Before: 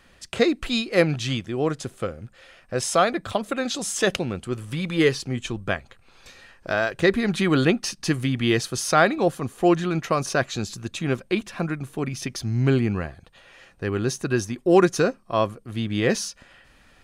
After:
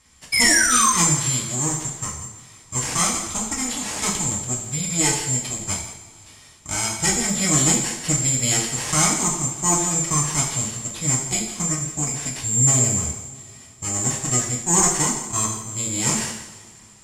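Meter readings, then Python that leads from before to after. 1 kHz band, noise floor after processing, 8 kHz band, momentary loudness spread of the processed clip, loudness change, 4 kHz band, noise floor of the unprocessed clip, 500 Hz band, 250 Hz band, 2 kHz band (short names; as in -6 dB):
+1.0 dB, -47 dBFS, +17.5 dB, 12 LU, +4.0 dB, +4.0 dB, -56 dBFS, -10.0 dB, -3.5 dB, +1.0 dB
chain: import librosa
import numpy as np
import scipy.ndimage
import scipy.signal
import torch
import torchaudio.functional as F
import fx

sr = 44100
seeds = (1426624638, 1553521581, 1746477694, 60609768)

y = fx.lower_of_two(x, sr, delay_ms=0.91)
y = fx.spec_paint(y, sr, seeds[0], shape='fall', start_s=0.32, length_s=0.58, low_hz=1000.0, high_hz=2300.0, level_db=-18.0)
y = fx.highpass(y, sr, hz=66.0, slope=6)
y = fx.low_shelf(y, sr, hz=88.0, db=10.0)
y = fx.notch(y, sr, hz=1400.0, q=20.0)
y = y + 10.0 ** (-13.5 / 20.0) * np.pad(y, (int(168 * sr / 1000.0), 0))[:len(y)]
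y = (np.kron(y[::6], np.eye(6)[0]) * 6)[:len(y)]
y = scipy.signal.sosfilt(scipy.signal.butter(4, 9100.0, 'lowpass', fs=sr, output='sos'), y)
y = fx.rev_double_slope(y, sr, seeds[1], early_s=0.58, late_s=3.1, knee_db=-20, drr_db=-3.5)
y = F.gain(torch.from_numpy(y), -7.5).numpy()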